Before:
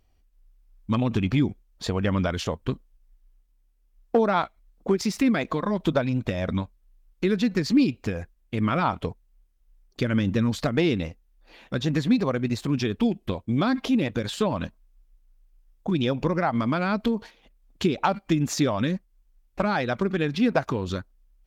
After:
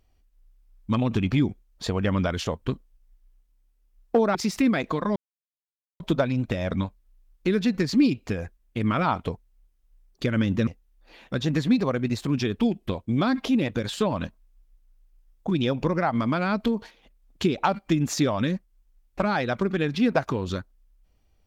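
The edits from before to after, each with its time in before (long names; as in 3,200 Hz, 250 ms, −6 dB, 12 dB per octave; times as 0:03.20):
0:04.35–0:04.96: remove
0:05.77: splice in silence 0.84 s
0:10.44–0:11.07: remove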